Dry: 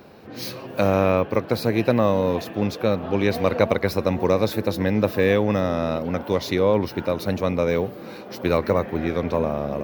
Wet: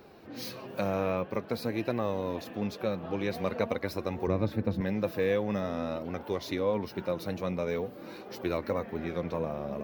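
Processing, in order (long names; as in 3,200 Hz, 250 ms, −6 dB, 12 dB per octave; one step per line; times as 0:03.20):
0:04.27–0:04.81: bass and treble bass +11 dB, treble −13 dB
in parallel at −0.5 dB: downward compressor, threshold −30 dBFS, peak gain reduction 18.5 dB
on the sum: flanger 0.48 Hz, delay 2.2 ms, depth 4.2 ms, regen +54%
level −8 dB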